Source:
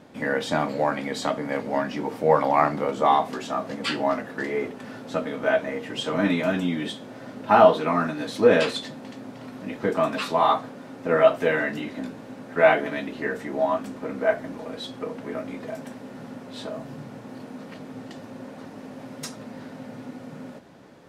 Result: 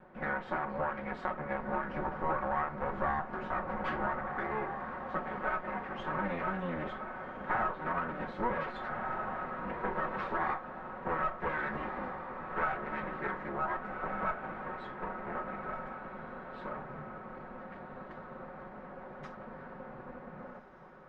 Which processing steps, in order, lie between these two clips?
lower of the sound and its delayed copy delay 5.4 ms
low-pass with resonance 1,500 Hz, resonance Q 1.6
parametric band 1,000 Hz +2.5 dB 1.8 octaves
feedback delay with all-pass diffusion 1,543 ms, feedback 45%, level −12 dB
downward compressor 4 to 1, threshold −23 dBFS, peak gain reduction 12.5 dB
0:01.53–0:04.31: low-shelf EQ 130 Hz +6.5 dB
level −7.5 dB

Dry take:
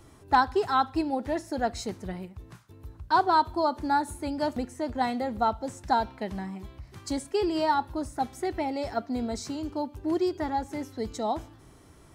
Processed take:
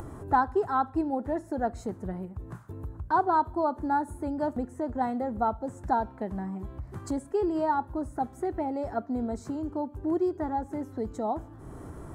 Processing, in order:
high-shelf EQ 2,000 Hz −11 dB
upward compression, threshold −29 dBFS
flat-topped bell 3,500 Hz −9.5 dB

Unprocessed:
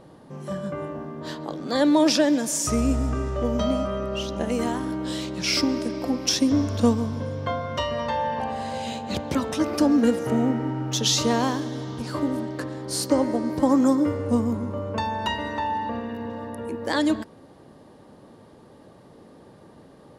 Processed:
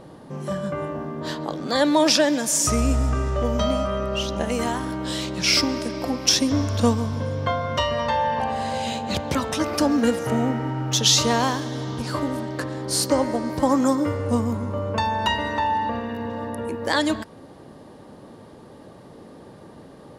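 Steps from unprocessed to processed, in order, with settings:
dynamic equaliser 300 Hz, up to −7 dB, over −34 dBFS, Q 0.8
level +5 dB

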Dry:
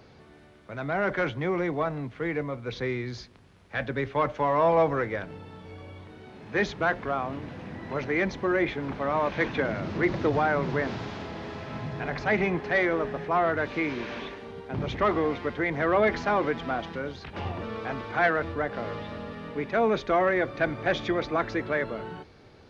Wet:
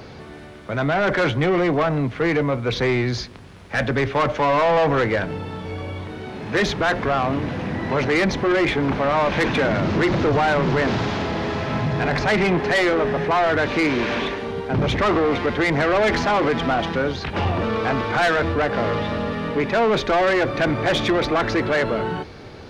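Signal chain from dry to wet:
in parallel at +2.5 dB: brickwall limiter −21.5 dBFS, peak gain reduction 9 dB
on the sum: soft clipping −21 dBFS, distortion −10 dB
level +6.5 dB

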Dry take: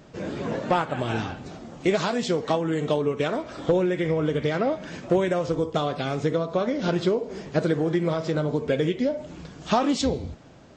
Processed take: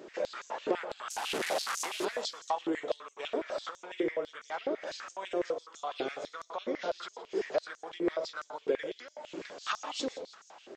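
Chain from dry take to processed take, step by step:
0:01.10–0:02.05: linear delta modulator 64 kbit/s, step −21.5 dBFS
downward compressor 5 to 1, threshold −32 dBFS, peak gain reduction 14 dB
echo with shifted repeats 166 ms, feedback 43%, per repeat −59 Hz, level −16 dB
convolution reverb RT60 0.40 s, pre-delay 102 ms, DRR 11 dB
high-pass on a step sequencer 12 Hz 380–6,400 Hz
level −2 dB

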